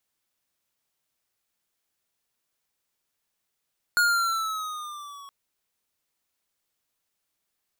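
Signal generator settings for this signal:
pitch glide with a swell square, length 1.32 s, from 1,440 Hz, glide −4.5 semitones, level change −25 dB, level −19.5 dB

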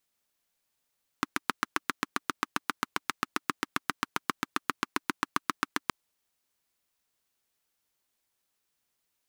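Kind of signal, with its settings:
pulse-train model of a single-cylinder engine, steady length 4.67 s, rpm 900, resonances 290/1,200 Hz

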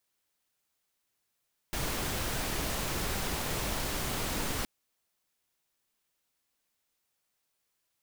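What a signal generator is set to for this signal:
noise pink, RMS −33 dBFS 2.92 s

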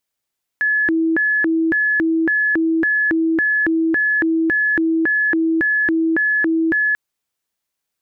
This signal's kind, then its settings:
siren hi-lo 325–1,710 Hz 1.8 per second sine −14 dBFS 6.34 s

